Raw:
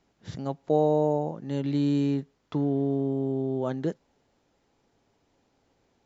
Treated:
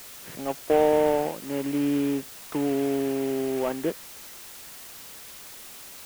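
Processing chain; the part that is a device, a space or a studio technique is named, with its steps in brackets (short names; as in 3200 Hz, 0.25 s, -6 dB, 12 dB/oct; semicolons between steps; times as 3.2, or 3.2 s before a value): army field radio (BPF 300–2900 Hz; CVSD 16 kbps; white noise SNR 16 dB); gain +4.5 dB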